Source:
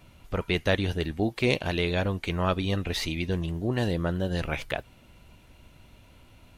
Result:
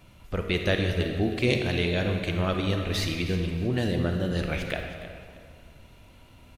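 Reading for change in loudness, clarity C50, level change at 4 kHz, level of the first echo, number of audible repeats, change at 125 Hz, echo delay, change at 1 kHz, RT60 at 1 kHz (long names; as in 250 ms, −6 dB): +1.0 dB, 3.5 dB, +1.0 dB, −14.5 dB, 2, +2.0 dB, 314 ms, −2.5 dB, 2.1 s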